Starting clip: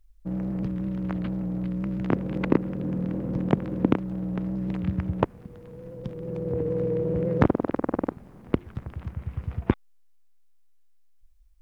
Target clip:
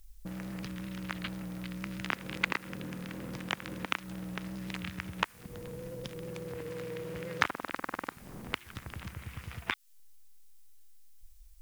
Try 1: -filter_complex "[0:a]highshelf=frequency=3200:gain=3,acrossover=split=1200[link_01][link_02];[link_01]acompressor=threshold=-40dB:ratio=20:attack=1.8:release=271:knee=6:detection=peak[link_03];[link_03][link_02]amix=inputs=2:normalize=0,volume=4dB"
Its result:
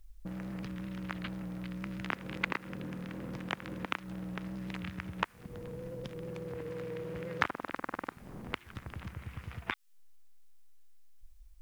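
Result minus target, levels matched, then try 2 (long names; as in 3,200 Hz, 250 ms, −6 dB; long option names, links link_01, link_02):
8,000 Hz band −7.0 dB
-filter_complex "[0:a]highshelf=frequency=3200:gain=13.5,acrossover=split=1200[link_01][link_02];[link_01]acompressor=threshold=-40dB:ratio=20:attack=1.8:release=271:knee=6:detection=peak[link_03];[link_03][link_02]amix=inputs=2:normalize=0,volume=4dB"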